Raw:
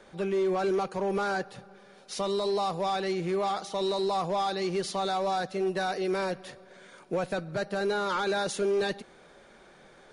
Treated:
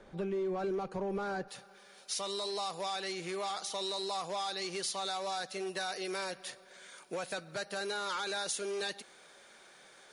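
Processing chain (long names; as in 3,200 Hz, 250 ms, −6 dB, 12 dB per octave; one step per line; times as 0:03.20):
spectral tilt −1.5 dB per octave, from 0:01.47 +3.5 dB per octave
downward compressor 2.5 to 1, threshold −31 dBFS, peak gain reduction 6 dB
level −3.5 dB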